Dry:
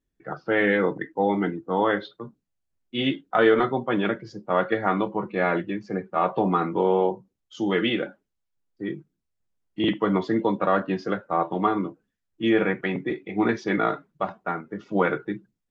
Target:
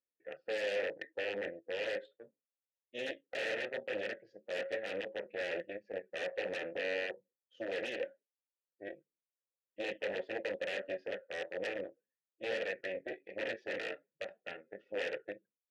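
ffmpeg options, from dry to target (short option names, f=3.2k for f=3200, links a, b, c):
-filter_complex "[0:a]aeval=exprs='0.447*(cos(1*acos(clip(val(0)/0.447,-1,1)))-cos(1*PI/2))+0.178*(cos(4*acos(clip(val(0)/0.447,-1,1)))-cos(4*PI/2))+0.0355*(cos(7*acos(clip(val(0)/0.447,-1,1)))-cos(7*PI/2))':c=same,aeval=exprs='0.133*(abs(mod(val(0)/0.133+3,4)-2)-1)':c=same,asplit=3[a][b][c];[a]bandpass=f=530:t=q:w=8,volume=0dB[d];[b]bandpass=f=1.84k:t=q:w=8,volume=-6dB[e];[c]bandpass=f=2.48k:t=q:w=8,volume=-9dB[f];[d][e][f]amix=inputs=3:normalize=0,volume=2.5dB"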